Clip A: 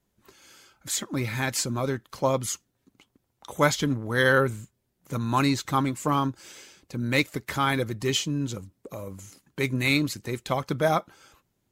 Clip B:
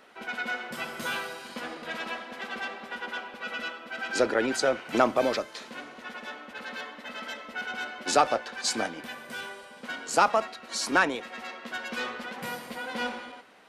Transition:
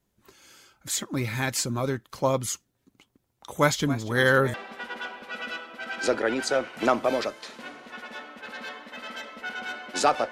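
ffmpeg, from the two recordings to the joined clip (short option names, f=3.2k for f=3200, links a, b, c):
-filter_complex "[0:a]asettb=1/sr,asplit=3[a][b][c];[a]atrim=end=3.524[d];[b]atrim=start=3.52:end=4.54,asetpts=PTS-STARTPTS,afade=t=in:d=0.004:c=qsin,afade=t=out:st=1.016:d=0.004:c=qsin,asplit=7[e][f][g][h][i][j][k];[f]adelay=277,afreqshift=100,volume=-15dB[l];[g]adelay=554,afreqshift=200,volume=-19.6dB[m];[h]adelay=831,afreqshift=300,volume=-24.2dB[n];[i]adelay=1108,afreqshift=400,volume=-28.7dB[o];[j]adelay=1385,afreqshift=500,volume=-33.3dB[p];[k]adelay=1662,afreqshift=600,volume=-37.9dB[q];[e][l][m][n][o][p][q]amix=inputs=7:normalize=0,atrim=end_sample=44982[r];[c]atrim=start=4.536[s];[d][r]acrossfade=d=0.004:c1=hsin:c2=qsin[t];[t][s]acrossfade=d=0.004:c1=qsin:c2=hsin,apad=whole_dur=10.31,atrim=end=10.31,atrim=end=4.542[u];[1:a]atrim=start=2.658:end=8.43[v];[u][v]acrossfade=d=0.004:c1=hsin:c2=hsin"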